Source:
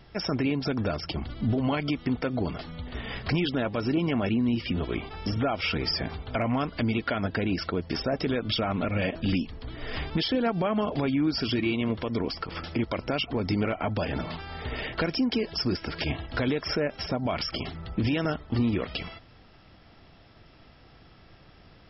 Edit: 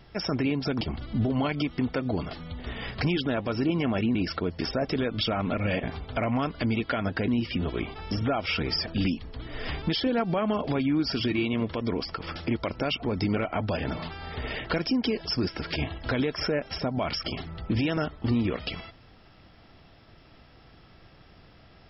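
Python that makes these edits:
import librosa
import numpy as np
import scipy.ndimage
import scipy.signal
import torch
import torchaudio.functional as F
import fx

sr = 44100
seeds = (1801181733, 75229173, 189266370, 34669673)

y = fx.edit(x, sr, fx.cut(start_s=0.81, length_s=0.28),
    fx.swap(start_s=4.43, length_s=1.58, other_s=7.46, other_length_s=1.68), tone=tone)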